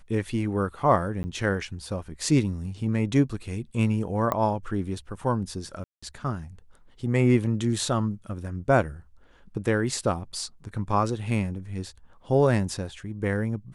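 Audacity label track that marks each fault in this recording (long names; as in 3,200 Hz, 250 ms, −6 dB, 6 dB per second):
1.230000	1.240000	drop-out 10 ms
4.320000	4.320000	click −13 dBFS
5.840000	6.030000	drop-out 185 ms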